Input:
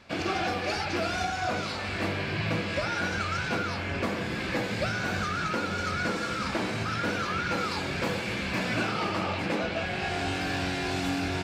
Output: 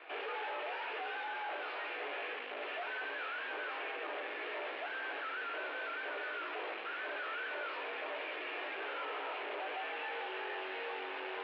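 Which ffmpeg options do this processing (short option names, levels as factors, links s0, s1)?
-af "flanger=delay=15.5:depth=3.2:speed=1,aeval=exprs='(tanh(200*val(0)+0.4)-tanh(0.4))/200':c=same,highpass=f=290:t=q:w=0.5412,highpass=f=290:t=q:w=1.307,lowpass=f=3000:t=q:w=0.5176,lowpass=f=3000:t=q:w=0.7071,lowpass=f=3000:t=q:w=1.932,afreqshift=100,volume=2.51"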